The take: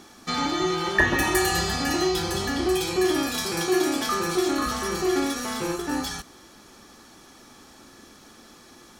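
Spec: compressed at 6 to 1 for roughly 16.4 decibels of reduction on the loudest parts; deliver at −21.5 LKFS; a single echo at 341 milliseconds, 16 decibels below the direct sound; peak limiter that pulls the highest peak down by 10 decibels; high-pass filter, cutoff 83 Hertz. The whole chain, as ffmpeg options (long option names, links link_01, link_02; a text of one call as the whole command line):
ffmpeg -i in.wav -af "highpass=83,acompressor=threshold=-34dB:ratio=6,alimiter=level_in=6dB:limit=-24dB:level=0:latency=1,volume=-6dB,aecho=1:1:341:0.158,volume=18dB" out.wav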